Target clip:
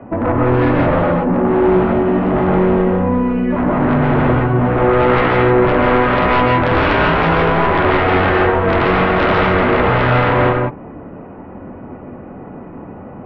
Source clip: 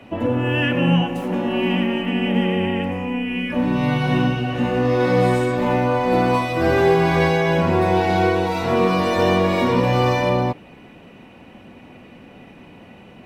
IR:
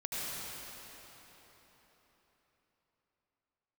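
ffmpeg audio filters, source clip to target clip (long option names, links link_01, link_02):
-filter_complex "[0:a]lowpass=frequency=1400:width=0.5412,lowpass=frequency=1400:width=1.3066,aeval=exprs='0.596*sin(PI/2*5.01*val(0)/0.596)':channel_layout=same[link_01];[1:a]atrim=start_sample=2205,atrim=end_sample=4410,asetrate=24255,aresample=44100[link_02];[link_01][link_02]afir=irnorm=-1:irlink=0,volume=-8dB"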